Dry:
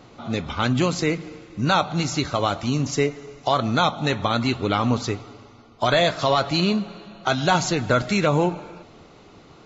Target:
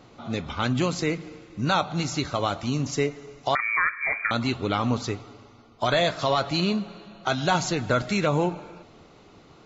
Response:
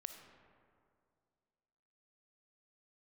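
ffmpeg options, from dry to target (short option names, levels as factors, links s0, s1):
-filter_complex "[0:a]asettb=1/sr,asplit=3[s0][s1][s2];[s0]atrim=end=3.554[s3];[s1]atrim=start=3.55:end=4.31,asetpts=PTS-STARTPTS,afade=t=in:d=0.004:c=qsin,afade=t=out:st=0.756:d=0.004:c=qsin,lowpass=f=2100:t=q:w=0.5098,lowpass=f=2100:t=q:w=0.6013,lowpass=f=2100:t=q:w=0.9,lowpass=f=2100:t=q:w=2.563,afreqshift=-2500[s4];[s2]atrim=start=4.306[s5];[s3][s4]acrossfade=d=0.004:c1=hsin:c2=qsin[s6];[s6][s5]acrossfade=d=0.004:c1=qsin:c2=hsin,volume=0.668"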